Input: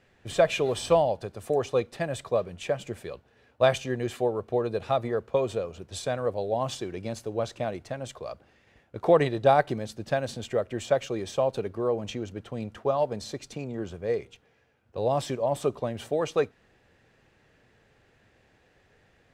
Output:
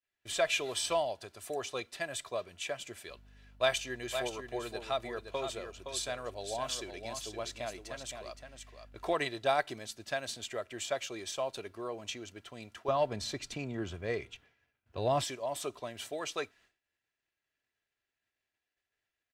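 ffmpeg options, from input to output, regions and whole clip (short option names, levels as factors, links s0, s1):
-filter_complex "[0:a]asettb=1/sr,asplit=3[s0][s1][s2];[s0]atrim=end=3.094[s3];[s1]atrim=start=3.09:end=9.14,asetpts=PTS-STARTPTS,afade=t=in:d=0.004:c=qsin,afade=t=out:st=6.046:d=0.004:c=qsin,aeval=exprs='val(0)+0.00708*(sin(2*PI*50*n/s)+sin(2*PI*2*50*n/s)/2+sin(2*PI*3*50*n/s)/3+sin(2*PI*4*50*n/s)/4+sin(2*PI*5*50*n/s)/5)':c=same,aecho=1:1:517:0.422,atrim=end_sample=266805[s4];[s2]atrim=start=9.136[s5];[s3][s4]acrossfade=d=0.004:c1=hsin:c2=qsin[s6];[s6][s5]acrossfade=d=0.004:c1=qsin:c2=hsin,asettb=1/sr,asplit=3[s7][s8][s9];[s7]atrim=end=12.884[s10];[s8]atrim=start=12.88:end=15.24,asetpts=PTS-STARTPTS,afade=t=in:d=0.004:c=qsin,afade=t=out:st=2.356:d=0.004:c=qsin,bass=f=250:g=9,treble=f=4000:g=-8,acontrast=37[s11];[s9]atrim=start=15.236[s12];[s10][s11]acrossfade=d=0.004:c1=hsin:c2=qsin[s13];[s13][s12]acrossfade=d=0.004:c1=qsin:c2=hsin,agate=range=0.0224:threshold=0.00355:ratio=3:detection=peak,tiltshelf=f=1100:g=-8.5,aecho=1:1:3:0.39,volume=0.473"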